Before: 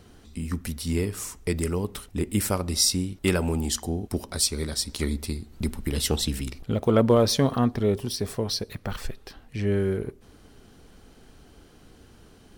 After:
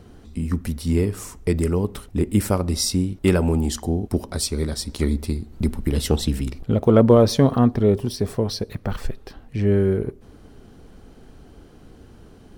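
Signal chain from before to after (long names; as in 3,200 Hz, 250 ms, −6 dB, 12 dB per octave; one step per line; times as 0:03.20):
tilt shelving filter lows +4.5 dB, about 1,300 Hz
level +2 dB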